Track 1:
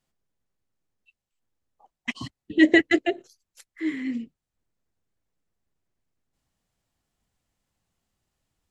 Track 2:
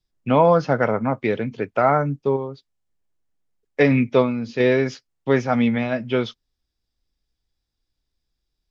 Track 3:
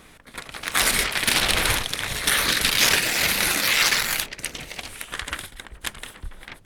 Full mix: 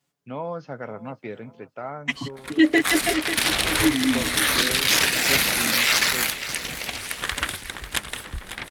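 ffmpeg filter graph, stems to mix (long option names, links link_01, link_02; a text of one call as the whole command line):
ffmpeg -i stem1.wav -i stem2.wav -i stem3.wav -filter_complex "[0:a]highpass=110,aecho=1:1:7:0.93,volume=3dB,asplit=2[link_01][link_02];[link_02]volume=-14dB[link_03];[1:a]volume=-16.5dB,asplit=2[link_04][link_05];[link_05]volume=-20.5dB[link_06];[2:a]adelay=2100,volume=0dB,asplit=2[link_07][link_08];[link_08]volume=-14.5dB[link_09];[link_03][link_06][link_09]amix=inputs=3:normalize=0,aecho=0:1:544|1088|1632|2176|2720|3264:1|0.42|0.176|0.0741|0.0311|0.0131[link_10];[link_01][link_04][link_07][link_10]amix=inputs=4:normalize=0,highpass=43,dynaudnorm=framelen=120:gausssize=17:maxgain=6dB,alimiter=limit=-7dB:level=0:latency=1:release=281" out.wav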